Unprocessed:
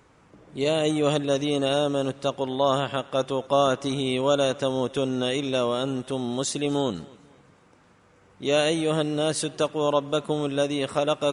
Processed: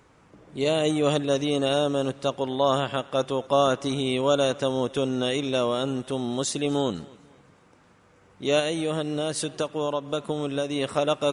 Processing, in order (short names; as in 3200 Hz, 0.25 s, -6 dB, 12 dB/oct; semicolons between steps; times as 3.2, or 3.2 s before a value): 8.59–10.76 compressor, threshold -23 dBFS, peak gain reduction 6.5 dB